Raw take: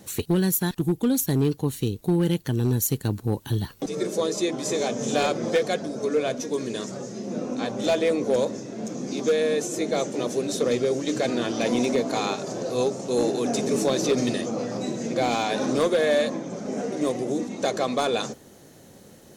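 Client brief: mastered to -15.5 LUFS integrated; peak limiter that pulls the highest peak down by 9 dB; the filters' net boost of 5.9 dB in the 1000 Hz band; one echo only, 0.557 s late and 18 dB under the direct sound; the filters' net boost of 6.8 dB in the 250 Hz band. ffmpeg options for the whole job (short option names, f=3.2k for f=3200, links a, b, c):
-af "equalizer=f=250:t=o:g=8,equalizer=f=1k:t=o:g=8,alimiter=limit=-16.5dB:level=0:latency=1,aecho=1:1:557:0.126,volume=9.5dB"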